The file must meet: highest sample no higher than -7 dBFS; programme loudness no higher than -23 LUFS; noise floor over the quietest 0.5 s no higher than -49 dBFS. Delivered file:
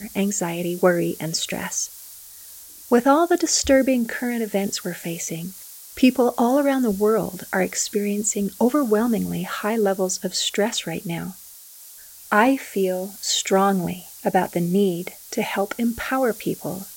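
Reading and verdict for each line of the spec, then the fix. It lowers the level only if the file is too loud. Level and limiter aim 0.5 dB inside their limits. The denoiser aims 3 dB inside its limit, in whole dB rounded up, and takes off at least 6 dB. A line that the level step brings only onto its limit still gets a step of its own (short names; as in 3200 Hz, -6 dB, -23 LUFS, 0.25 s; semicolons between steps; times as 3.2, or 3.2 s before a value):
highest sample -3.5 dBFS: fail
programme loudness -22.0 LUFS: fail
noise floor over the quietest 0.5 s -44 dBFS: fail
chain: denoiser 7 dB, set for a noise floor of -44 dBFS; gain -1.5 dB; limiter -7.5 dBFS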